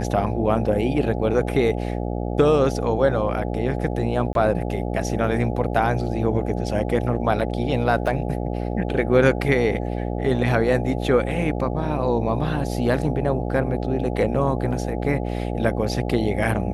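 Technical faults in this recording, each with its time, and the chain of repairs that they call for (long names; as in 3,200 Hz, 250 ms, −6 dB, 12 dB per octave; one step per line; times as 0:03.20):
mains buzz 60 Hz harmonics 14 −26 dBFS
0:04.33–0:04.35: drop-out 22 ms
0:08.07: drop-out 4.4 ms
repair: hum removal 60 Hz, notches 14
repair the gap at 0:04.33, 22 ms
repair the gap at 0:08.07, 4.4 ms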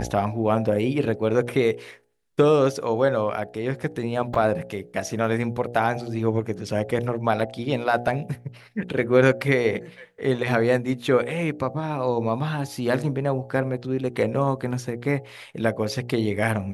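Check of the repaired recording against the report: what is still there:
none of them is left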